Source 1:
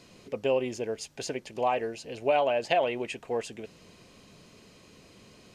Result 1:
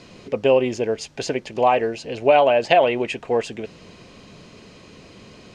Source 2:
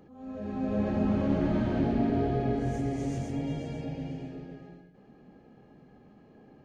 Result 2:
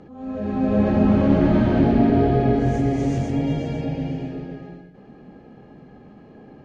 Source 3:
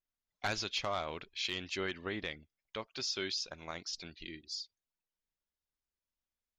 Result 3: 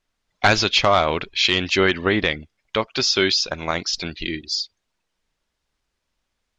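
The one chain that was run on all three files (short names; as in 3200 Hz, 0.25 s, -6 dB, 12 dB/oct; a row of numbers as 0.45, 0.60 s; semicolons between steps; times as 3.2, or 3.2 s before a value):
air absorption 70 m; match loudness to -20 LUFS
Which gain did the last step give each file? +10.0, +10.5, +20.0 dB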